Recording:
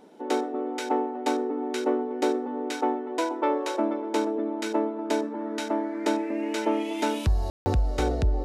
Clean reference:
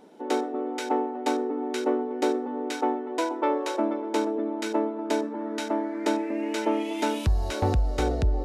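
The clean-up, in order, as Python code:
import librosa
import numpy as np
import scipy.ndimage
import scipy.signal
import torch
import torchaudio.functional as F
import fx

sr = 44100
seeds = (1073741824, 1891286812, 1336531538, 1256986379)

y = fx.fix_ambience(x, sr, seeds[0], print_start_s=0.0, print_end_s=0.5, start_s=7.5, end_s=7.66)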